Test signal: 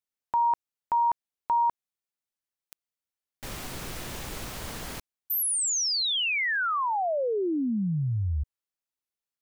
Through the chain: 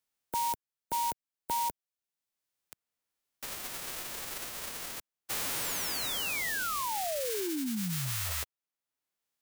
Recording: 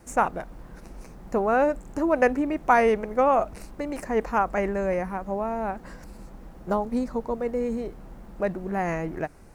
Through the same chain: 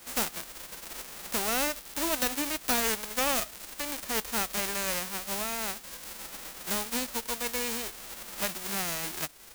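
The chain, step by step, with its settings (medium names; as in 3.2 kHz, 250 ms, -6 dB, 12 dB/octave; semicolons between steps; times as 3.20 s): formants flattened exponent 0.1; wavefolder -11 dBFS; three bands compressed up and down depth 40%; trim -6 dB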